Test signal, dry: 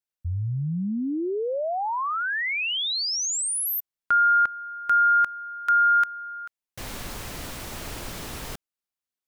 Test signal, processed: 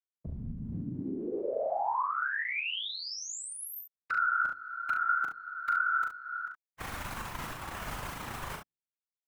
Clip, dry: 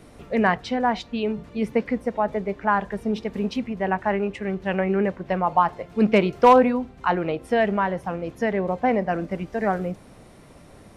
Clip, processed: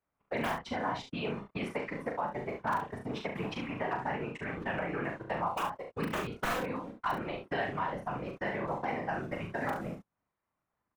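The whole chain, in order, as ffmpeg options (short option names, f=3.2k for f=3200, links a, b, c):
-filter_complex "[0:a]bandreject=f=63.31:t=h:w=4,bandreject=f=126.62:t=h:w=4,bandreject=f=189.93:t=h:w=4,bandreject=f=253.24:t=h:w=4,bandreject=f=316.55:t=h:w=4,bandreject=f=379.86:t=h:w=4,bandreject=f=443.17:t=h:w=4,bandreject=f=506.48:t=h:w=4,agate=range=-43dB:threshold=-38dB:ratio=16:release=40:detection=peak,aeval=exprs='(mod(2.82*val(0)+1,2)-1)/2.82':c=same,firequalizer=gain_entry='entry(490,0);entry(990,13);entry(4500,-5)':delay=0.05:min_phase=1,acrossover=split=600|4100[a][b][c];[a]acompressor=threshold=-40dB:ratio=4[d];[b]acompressor=threshold=-42dB:ratio=4[e];[c]acompressor=threshold=-34dB:ratio=4[f];[d][e][f]amix=inputs=3:normalize=0,asoftclip=type=hard:threshold=-23dB,acrossover=split=2500[g][h];[h]acompressor=threshold=-42dB:ratio=4:attack=1:release=60[i];[g][i]amix=inputs=2:normalize=0,afftfilt=real='hypot(re,im)*cos(2*PI*random(0))':imag='hypot(re,im)*sin(2*PI*random(1))':win_size=512:overlap=0.75,asplit=2[j][k];[k]aecho=0:1:39|69:0.562|0.398[l];[j][l]amix=inputs=2:normalize=0,volume=6dB"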